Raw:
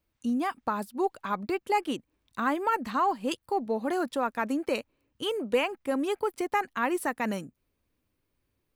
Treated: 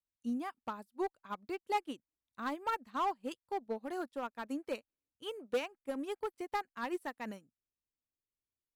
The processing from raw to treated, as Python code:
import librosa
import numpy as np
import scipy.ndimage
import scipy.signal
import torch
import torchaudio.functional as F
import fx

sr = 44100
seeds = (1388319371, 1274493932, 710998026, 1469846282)

y = np.clip(x, -10.0 ** (-22.0 / 20.0), 10.0 ** (-22.0 / 20.0))
y = fx.upward_expand(y, sr, threshold_db=-38.0, expansion=2.5)
y = F.gain(torch.from_numpy(y), -4.0).numpy()